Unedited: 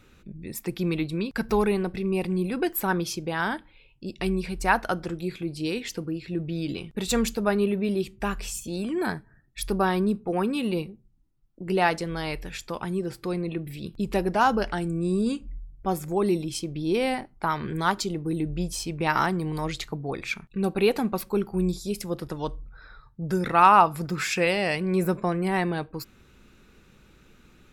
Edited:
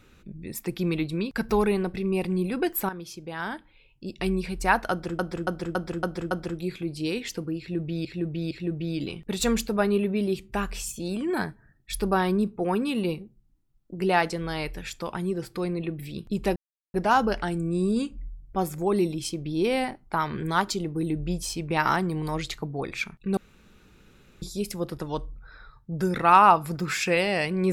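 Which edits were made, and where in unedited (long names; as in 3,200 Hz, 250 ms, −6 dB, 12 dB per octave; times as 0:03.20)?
0:02.89–0:04.22: fade in, from −13.5 dB
0:04.91–0:05.19: repeat, 6 plays
0:06.19–0:06.65: repeat, 3 plays
0:14.24: splice in silence 0.38 s
0:20.67–0:21.72: fill with room tone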